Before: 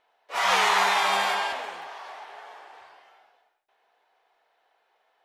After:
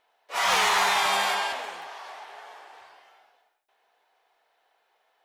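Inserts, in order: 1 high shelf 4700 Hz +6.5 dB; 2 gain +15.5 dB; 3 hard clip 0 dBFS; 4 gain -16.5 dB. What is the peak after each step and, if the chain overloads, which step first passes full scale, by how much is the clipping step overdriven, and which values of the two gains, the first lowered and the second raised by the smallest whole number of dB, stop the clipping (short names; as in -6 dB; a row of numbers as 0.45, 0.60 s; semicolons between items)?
-8.0, +7.5, 0.0, -16.5 dBFS; step 2, 7.5 dB; step 2 +7.5 dB, step 4 -8.5 dB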